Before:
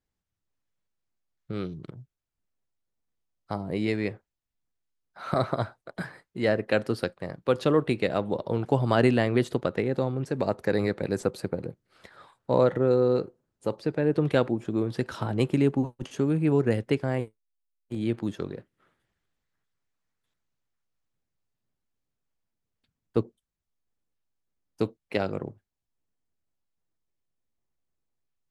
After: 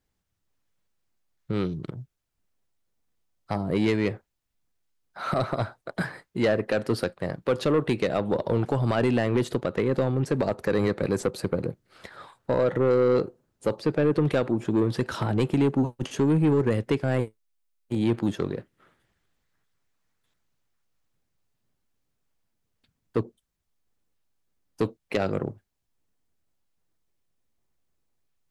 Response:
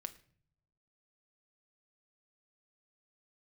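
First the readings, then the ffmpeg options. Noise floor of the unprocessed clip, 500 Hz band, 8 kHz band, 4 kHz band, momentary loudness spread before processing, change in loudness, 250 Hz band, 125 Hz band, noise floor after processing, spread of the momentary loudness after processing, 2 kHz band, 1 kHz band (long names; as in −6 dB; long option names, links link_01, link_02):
below −85 dBFS, +1.0 dB, can't be measured, +1.5 dB, 14 LU, +1.0 dB, +2.0 dB, +2.0 dB, −79 dBFS, 10 LU, +0.5 dB, +0.5 dB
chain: -af "alimiter=limit=-15.5dB:level=0:latency=1:release=228,asoftclip=type=tanh:threshold=-21.5dB,volume=6.5dB"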